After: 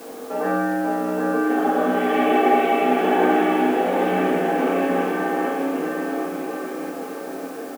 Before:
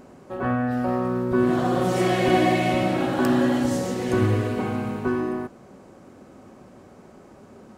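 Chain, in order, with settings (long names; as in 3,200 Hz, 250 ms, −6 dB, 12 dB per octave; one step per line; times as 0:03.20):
in parallel at −2 dB: compressor whose output falls as the input rises −32 dBFS
on the sum: single-sideband voice off tune +63 Hz 160–3,000 Hz
bouncing-ball delay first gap 770 ms, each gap 0.85×, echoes 5
convolution reverb RT60 0.75 s, pre-delay 3 ms, DRR −5 dB
background noise white −42 dBFS
level −5 dB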